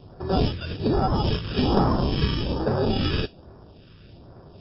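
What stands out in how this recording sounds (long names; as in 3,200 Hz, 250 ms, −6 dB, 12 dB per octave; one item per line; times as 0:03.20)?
aliases and images of a low sample rate 2,100 Hz, jitter 0%
phaser sweep stages 2, 1.2 Hz, lowest notch 740–2,800 Hz
MP3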